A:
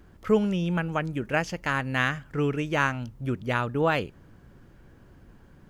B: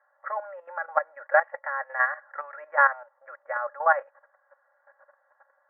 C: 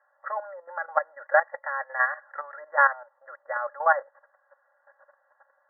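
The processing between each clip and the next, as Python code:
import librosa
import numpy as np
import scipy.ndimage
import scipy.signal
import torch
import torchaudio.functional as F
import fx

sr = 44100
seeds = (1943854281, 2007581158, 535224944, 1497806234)

y1 = scipy.signal.sosfilt(scipy.signal.cheby1(5, 1.0, [560.0, 1900.0], 'bandpass', fs=sr, output='sos'), x)
y1 = fx.level_steps(y1, sr, step_db=13)
y1 = y1 + 0.76 * np.pad(y1, (int(3.6 * sr / 1000.0), 0))[:len(y1)]
y1 = F.gain(torch.from_numpy(y1), 7.5).numpy()
y2 = fx.brickwall_lowpass(y1, sr, high_hz=2000.0)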